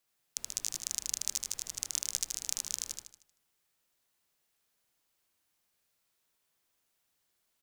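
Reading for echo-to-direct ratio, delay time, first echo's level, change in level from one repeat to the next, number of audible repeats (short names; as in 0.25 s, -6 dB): -2.0 dB, 77 ms, -3.0 dB, -7.5 dB, 5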